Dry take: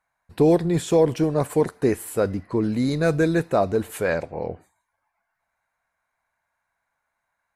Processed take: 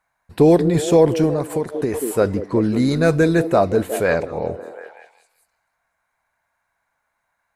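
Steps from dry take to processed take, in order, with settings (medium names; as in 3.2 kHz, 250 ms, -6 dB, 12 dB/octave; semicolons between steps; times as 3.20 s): on a send: repeats whose band climbs or falls 182 ms, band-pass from 340 Hz, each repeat 0.7 oct, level -8.5 dB; 1.33–1.94 s: on the sum: compression 6:1, threshold -23 dBFS, peak gain reduction 9 dB; trim +4.5 dB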